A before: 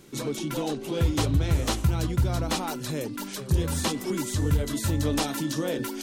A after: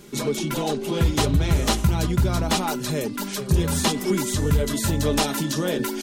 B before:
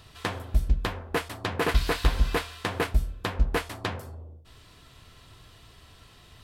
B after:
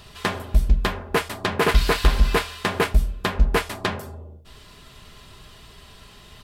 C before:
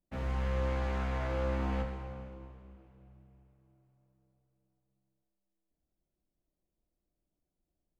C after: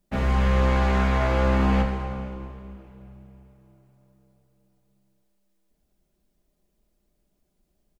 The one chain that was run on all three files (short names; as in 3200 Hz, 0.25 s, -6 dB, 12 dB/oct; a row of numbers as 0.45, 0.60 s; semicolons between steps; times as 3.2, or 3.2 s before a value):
comb 4.9 ms, depth 44%; in parallel at -6 dB: overloaded stage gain 18 dB; on the sum: match loudness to -23 LUFS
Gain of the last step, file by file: +1.5, +2.5, +9.0 dB